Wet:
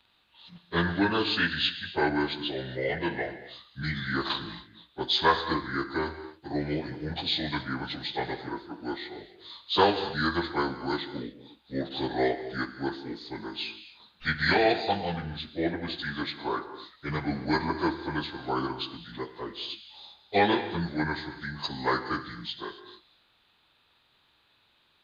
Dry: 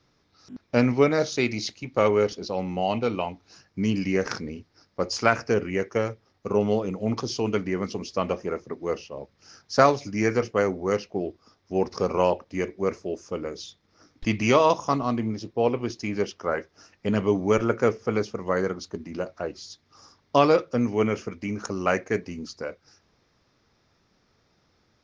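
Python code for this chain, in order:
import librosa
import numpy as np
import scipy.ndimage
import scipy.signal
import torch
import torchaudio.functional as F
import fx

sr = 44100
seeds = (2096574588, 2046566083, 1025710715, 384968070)

y = fx.pitch_bins(x, sr, semitones=-6.0)
y = fx.tilt_shelf(y, sr, db=-9.0, hz=800.0)
y = fx.rev_gated(y, sr, seeds[0], gate_ms=300, shape='flat', drr_db=10.0)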